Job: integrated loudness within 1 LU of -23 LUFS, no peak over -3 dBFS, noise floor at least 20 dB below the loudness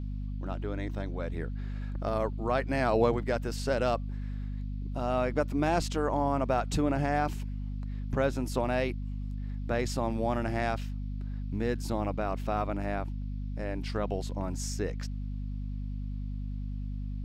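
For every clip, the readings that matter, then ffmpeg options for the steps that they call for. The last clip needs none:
hum 50 Hz; highest harmonic 250 Hz; hum level -32 dBFS; loudness -32.0 LUFS; peak level -12.5 dBFS; loudness target -23.0 LUFS
-> -af "bandreject=f=50:t=h:w=6,bandreject=f=100:t=h:w=6,bandreject=f=150:t=h:w=6,bandreject=f=200:t=h:w=6,bandreject=f=250:t=h:w=6"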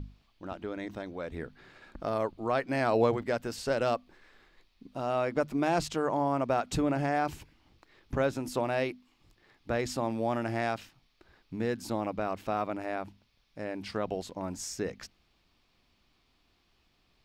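hum not found; loudness -32.0 LUFS; peak level -13.0 dBFS; loudness target -23.0 LUFS
-> -af "volume=2.82"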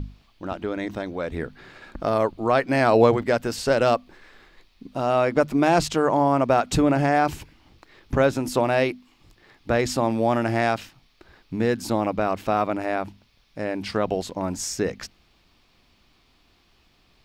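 loudness -23.0 LUFS; peak level -4.0 dBFS; noise floor -62 dBFS

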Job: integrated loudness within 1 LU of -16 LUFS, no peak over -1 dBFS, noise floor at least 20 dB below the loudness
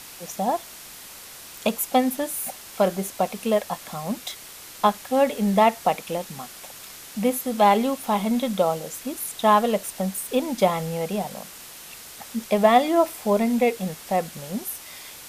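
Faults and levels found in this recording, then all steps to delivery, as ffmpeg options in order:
noise floor -42 dBFS; noise floor target -44 dBFS; loudness -23.5 LUFS; peak level -6.0 dBFS; loudness target -16.0 LUFS
-> -af "afftdn=nr=6:nf=-42"
-af "volume=2.37,alimiter=limit=0.891:level=0:latency=1"

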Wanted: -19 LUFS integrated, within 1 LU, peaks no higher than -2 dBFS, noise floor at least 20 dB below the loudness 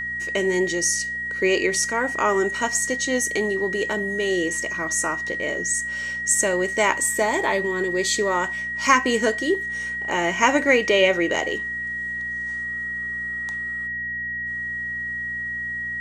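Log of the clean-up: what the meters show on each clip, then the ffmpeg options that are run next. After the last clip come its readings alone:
hum 60 Hz; highest harmonic 240 Hz; hum level -43 dBFS; steady tone 1.9 kHz; tone level -26 dBFS; loudness -22.5 LUFS; peak level -2.5 dBFS; loudness target -19.0 LUFS
-> -af "bandreject=f=60:t=h:w=4,bandreject=f=120:t=h:w=4,bandreject=f=180:t=h:w=4,bandreject=f=240:t=h:w=4"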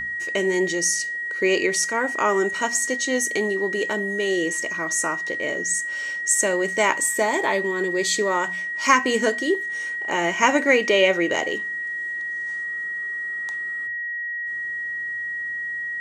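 hum not found; steady tone 1.9 kHz; tone level -26 dBFS
-> -af "bandreject=f=1900:w=30"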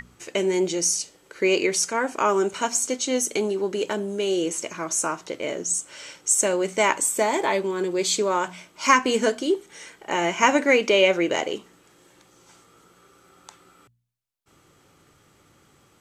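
steady tone not found; loudness -23.0 LUFS; peak level -3.0 dBFS; loudness target -19.0 LUFS
-> -af "volume=1.58,alimiter=limit=0.794:level=0:latency=1"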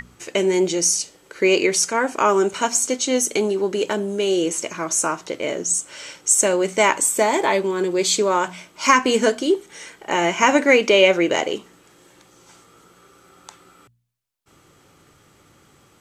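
loudness -19.0 LUFS; peak level -2.0 dBFS; noise floor -55 dBFS

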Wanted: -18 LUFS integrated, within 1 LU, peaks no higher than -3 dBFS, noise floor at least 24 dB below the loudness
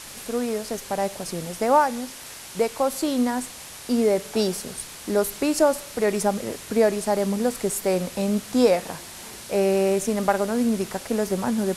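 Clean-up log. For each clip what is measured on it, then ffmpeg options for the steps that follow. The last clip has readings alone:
noise floor -40 dBFS; noise floor target -48 dBFS; loudness -24.0 LUFS; peak level -7.0 dBFS; loudness target -18.0 LUFS
-> -af "afftdn=nr=8:nf=-40"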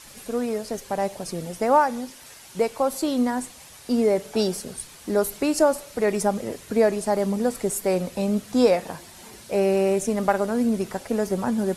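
noise floor -46 dBFS; noise floor target -48 dBFS
-> -af "afftdn=nr=6:nf=-46"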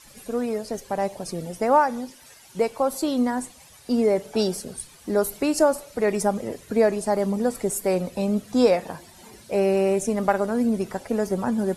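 noise floor -50 dBFS; loudness -24.0 LUFS; peak level -7.0 dBFS; loudness target -18.0 LUFS
-> -af "volume=2,alimiter=limit=0.708:level=0:latency=1"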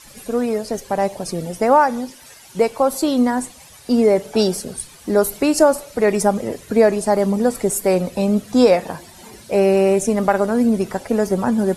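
loudness -18.0 LUFS; peak level -3.0 dBFS; noise floor -44 dBFS

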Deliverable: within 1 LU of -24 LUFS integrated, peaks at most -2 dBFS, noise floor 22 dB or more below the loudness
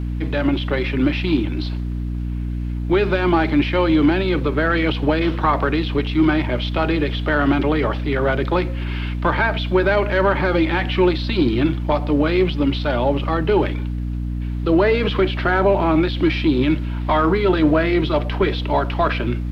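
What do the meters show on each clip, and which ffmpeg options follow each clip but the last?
hum 60 Hz; highest harmonic 300 Hz; hum level -21 dBFS; loudness -19.5 LUFS; peak level -5.0 dBFS; loudness target -24.0 LUFS
-> -af "bandreject=f=60:t=h:w=6,bandreject=f=120:t=h:w=6,bandreject=f=180:t=h:w=6,bandreject=f=240:t=h:w=6,bandreject=f=300:t=h:w=6"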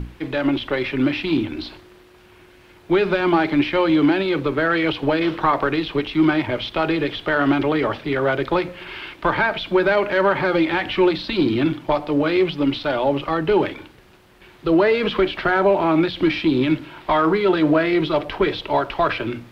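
hum not found; loudness -20.0 LUFS; peak level -5.5 dBFS; loudness target -24.0 LUFS
-> -af "volume=0.631"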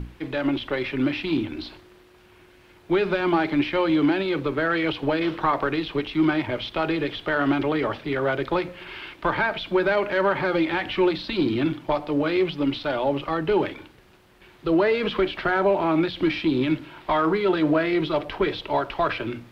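loudness -24.0 LUFS; peak level -9.5 dBFS; noise floor -53 dBFS

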